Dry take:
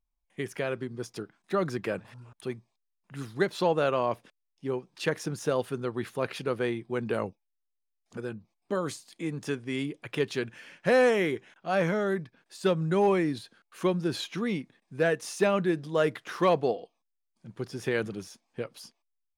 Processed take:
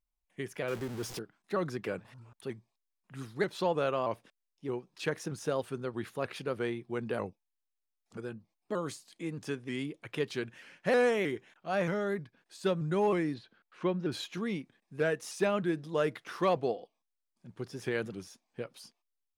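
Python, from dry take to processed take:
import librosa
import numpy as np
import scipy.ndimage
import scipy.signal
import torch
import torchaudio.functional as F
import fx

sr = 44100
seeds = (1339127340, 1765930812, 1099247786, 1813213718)

y = fx.zero_step(x, sr, step_db=-34.0, at=(0.68, 1.19))
y = fx.lowpass(y, sr, hz=3300.0, slope=12, at=(13.34, 14.12))
y = fx.vibrato_shape(y, sr, shape='saw_up', rate_hz=3.2, depth_cents=100.0)
y = F.gain(torch.from_numpy(y), -4.5).numpy()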